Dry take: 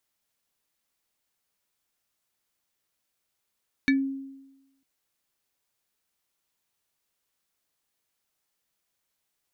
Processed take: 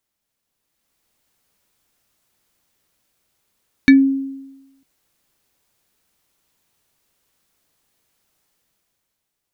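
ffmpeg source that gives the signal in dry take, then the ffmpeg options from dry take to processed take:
-f lavfi -i "aevalsrc='0.15*pow(10,-3*t/1.03)*sin(2*PI*271*t+1.3*pow(10,-3*t/0.17)*sin(2*PI*7.42*271*t))':duration=0.95:sample_rate=44100"
-af "lowshelf=frequency=490:gain=6,dynaudnorm=framelen=100:gausssize=17:maxgain=10.5dB"

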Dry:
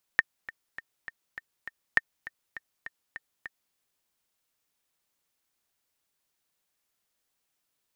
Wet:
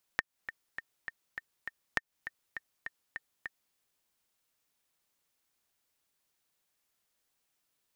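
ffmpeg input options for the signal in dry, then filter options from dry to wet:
-f lavfi -i "aevalsrc='pow(10,(-6.5-18.5*gte(mod(t,6*60/202),60/202))/20)*sin(2*PI*1820*mod(t,60/202))*exp(-6.91*mod(t,60/202)/0.03)':duration=3.56:sample_rate=44100"
-af "acompressor=threshold=-29dB:ratio=6"

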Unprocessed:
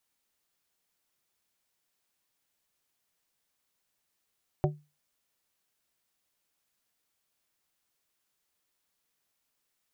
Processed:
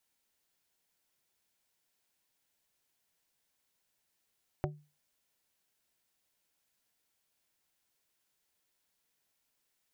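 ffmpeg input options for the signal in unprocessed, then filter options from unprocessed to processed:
-f lavfi -i "aevalsrc='0.0891*pow(10,-3*t/0.28)*sin(2*PI*149*t)+0.0708*pow(10,-3*t/0.147)*sin(2*PI*372.5*t)+0.0562*pow(10,-3*t/0.106)*sin(2*PI*596*t)+0.0447*pow(10,-3*t/0.091)*sin(2*PI*745*t)':duration=0.89:sample_rate=44100"
-af "bandreject=frequency=1200:width=10,acompressor=threshold=-32dB:ratio=6"

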